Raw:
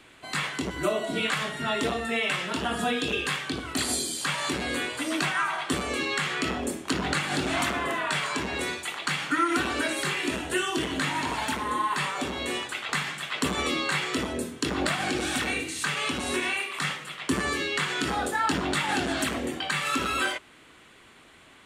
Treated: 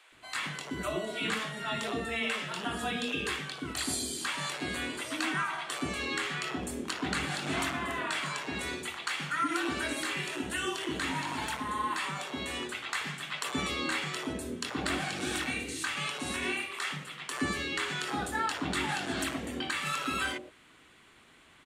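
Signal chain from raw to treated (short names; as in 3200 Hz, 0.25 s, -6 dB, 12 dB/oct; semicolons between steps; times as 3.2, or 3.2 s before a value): bands offset in time highs, lows 0.12 s, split 530 Hz; gain -5 dB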